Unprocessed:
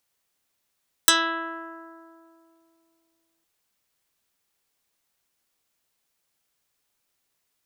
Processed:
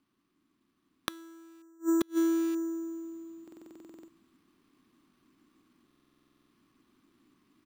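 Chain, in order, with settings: 1.11–1.62 s: zero-crossing glitches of -17.5 dBFS; low-pass 6 kHz 24 dB/octave; resonant low shelf 410 Hz +7 dB, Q 3; gain riding within 4 dB 2 s; small resonant body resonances 250/1100 Hz, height 15 dB, ringing for 20 ms; sample-and-hold 6×; delay 928 ms -18 dB; inverted gate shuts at -17 dBFS, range -37 dB; buffer glitch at 3.43/5.86 s, samples 2048, times 13

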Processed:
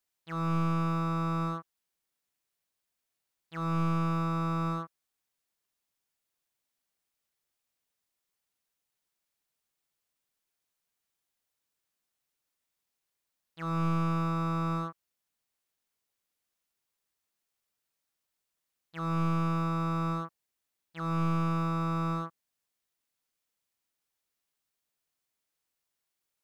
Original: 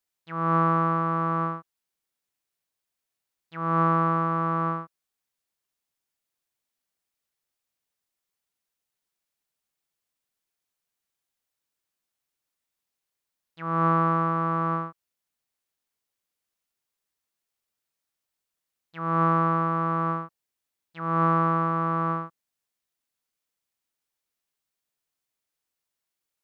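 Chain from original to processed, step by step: slew-rate limiter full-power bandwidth 21 Hz

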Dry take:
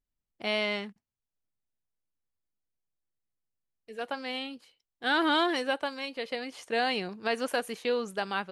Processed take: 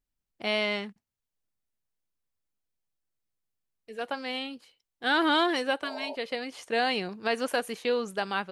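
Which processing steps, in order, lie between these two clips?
spectral replace 5.86–6.13 s, 380–980 Hz before; trim +1.5 dB

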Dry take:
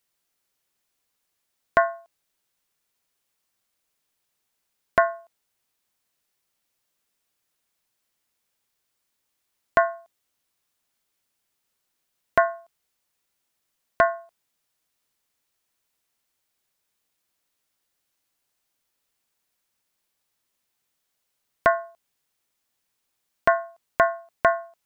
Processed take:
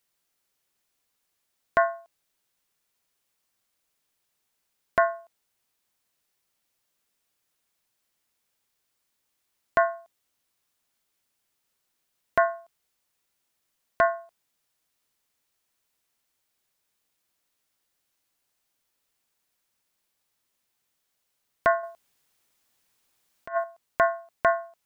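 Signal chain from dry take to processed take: peak limiter -8 dBFS, peak gain reduction 4.5 dB; 21.83–23.64 s: compressor with a negative ratio -27 dBFS, ratio -0.5

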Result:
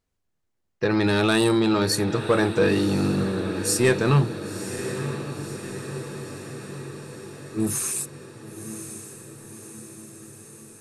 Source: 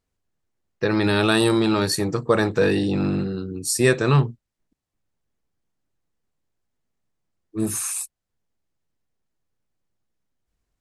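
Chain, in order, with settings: saturation -10.5 dBFS, distortion -18 dB; on a send: echo that smears into a reverb 1032 ms, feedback 64%, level -10.5 dB

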